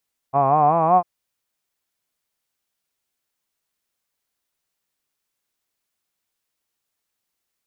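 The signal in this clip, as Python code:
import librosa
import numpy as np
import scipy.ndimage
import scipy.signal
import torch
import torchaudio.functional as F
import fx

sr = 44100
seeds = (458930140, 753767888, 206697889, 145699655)

y = fx.vowel(sr, seeds[0], length_s=0.7, word='hod', hz=132.0, glide_st=5.5, vibrato_hz=5.3, vibrato_st=0.9)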